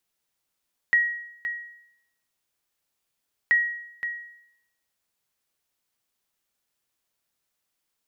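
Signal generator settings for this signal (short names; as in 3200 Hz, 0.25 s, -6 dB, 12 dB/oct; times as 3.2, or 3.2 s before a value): sonar ping 1900 Hz, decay 0.76 s, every 2.58 s, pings 2, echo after 0.52 s, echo -10.5 dB -13.5 dBFS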